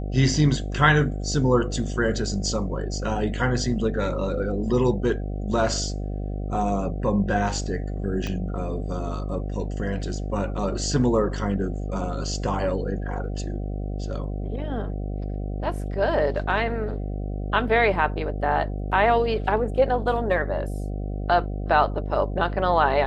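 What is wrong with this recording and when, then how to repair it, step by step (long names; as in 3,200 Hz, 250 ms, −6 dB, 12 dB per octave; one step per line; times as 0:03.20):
mains buzz 50 Hz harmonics 15 −29 dBFS
0:08.27: click −16 dBFS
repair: click removal
hum removal 50 Hz, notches 15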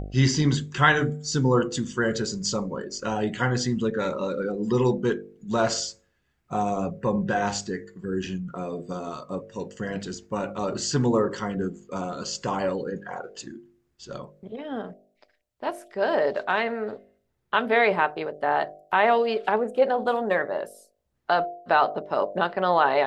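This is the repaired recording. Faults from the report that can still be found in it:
0:08.27: click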